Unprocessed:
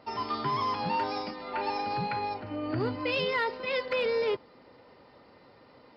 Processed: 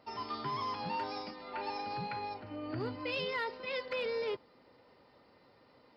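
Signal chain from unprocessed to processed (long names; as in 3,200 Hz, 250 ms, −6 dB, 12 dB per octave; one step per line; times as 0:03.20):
high-shelf EQ 4,500 Hz +4.5 dB
level −7.5 dB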